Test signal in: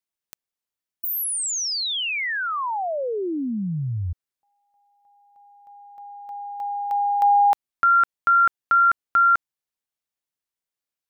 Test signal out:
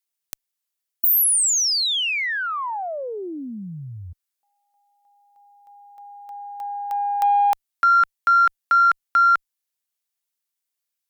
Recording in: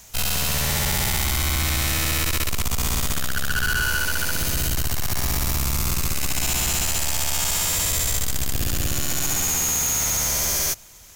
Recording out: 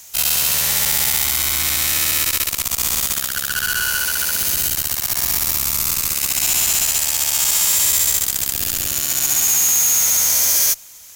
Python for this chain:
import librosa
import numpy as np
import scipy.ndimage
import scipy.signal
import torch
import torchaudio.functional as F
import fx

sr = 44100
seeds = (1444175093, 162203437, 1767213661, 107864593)

y = fx.tilt_eq(x, sr, slope=2.5)
y = fx.cheby_harmonics(y, sr, harmonics=(2, 4, 7), levels_db=(-6, -16, -36), full_scale_db=-5.0)